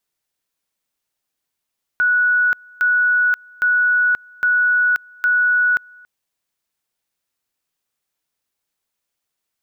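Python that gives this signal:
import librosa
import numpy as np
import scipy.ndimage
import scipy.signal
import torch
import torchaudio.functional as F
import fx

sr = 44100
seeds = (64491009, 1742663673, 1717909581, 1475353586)

y = fx.two_level_tone(sr, hz=1470.0, level_db=-12.5, drop_db=28.5, high_s=0.53, low_s=0.28, rounds=5)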